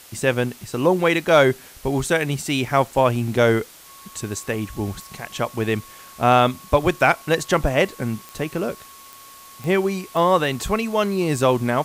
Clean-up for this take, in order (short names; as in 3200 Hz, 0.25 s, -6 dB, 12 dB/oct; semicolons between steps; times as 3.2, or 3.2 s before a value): de-click; notch 1100 Hz, Q 30; denoiser 21 dB, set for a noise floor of -44 dBFS